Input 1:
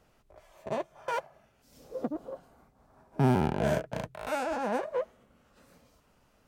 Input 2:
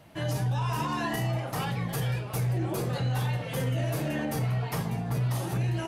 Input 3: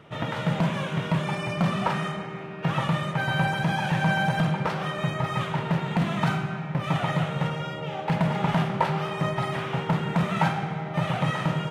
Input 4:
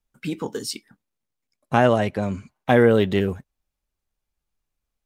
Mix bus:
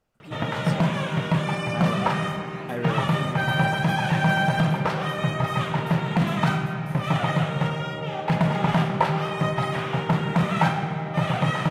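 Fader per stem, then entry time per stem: -10.5 dB, -14.0 dB, +2.5 dB, -15.5 dB; 0.00 s, 1.55 s, 0.20 s, 0.00 s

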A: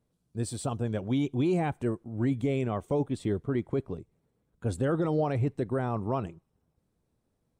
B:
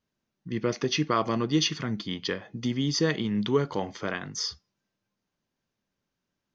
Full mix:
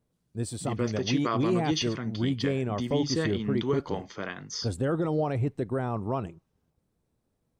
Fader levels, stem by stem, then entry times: 0.0 dB, -4.0 dB; 0.00 s, 0.15 s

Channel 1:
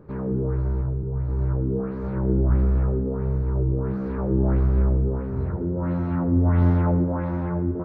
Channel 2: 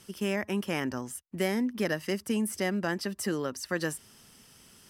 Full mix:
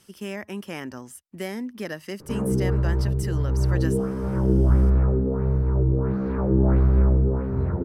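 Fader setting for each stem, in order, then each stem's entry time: +2.0 dB, -3.0 dB; 2.20 s, 0.00 s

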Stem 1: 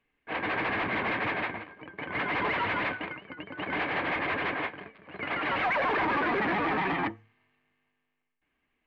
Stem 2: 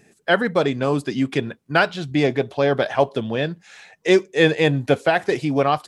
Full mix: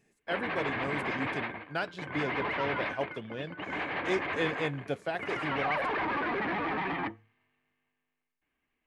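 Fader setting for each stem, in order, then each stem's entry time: -4.0 dB, -16.0 dB; 0.00 s, 0.00 s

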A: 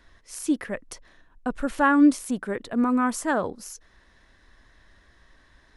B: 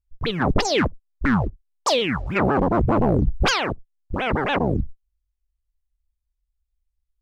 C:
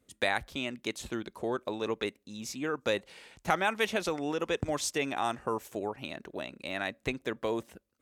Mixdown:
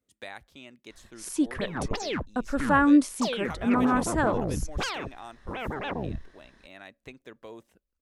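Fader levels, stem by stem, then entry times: -1.5 dB, -11.0 dB, -12.5 dB; 0.90 s, 1.35 s, 0.00 s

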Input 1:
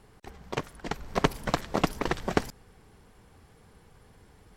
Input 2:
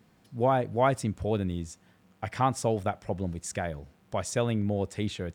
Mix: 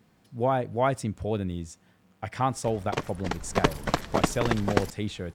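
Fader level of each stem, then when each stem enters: +1.5 dB, -0.5 dB; 2.40 s, 0.00 s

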